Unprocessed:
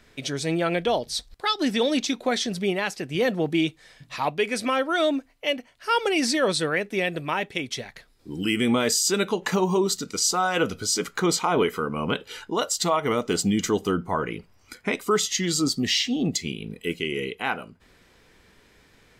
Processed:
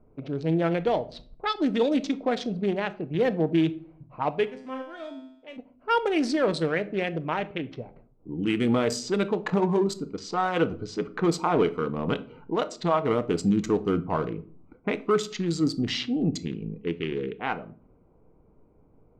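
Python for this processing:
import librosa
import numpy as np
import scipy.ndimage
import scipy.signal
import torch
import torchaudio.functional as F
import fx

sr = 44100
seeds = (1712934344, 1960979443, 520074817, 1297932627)

y = fx.wiener(x, sr, points=25)
y = fx.lowpass(y, sr, hz=2200.0, slope=6)
y = fx.env_lowpass(y, sr, base_hz=1200.0, full_db=-21.0)
y = fx.comb_fb(y, sr, f0_hz=130.0, decay_s=0.8, harmonics='all', damping=0.0, mix_pct=90, at=(4.45, 5.56), fade=0.02)
y = fx.room_shoebox(y, sr, seeds[0], volume_m3=460.0, walls='furnished', distance_m=0.51)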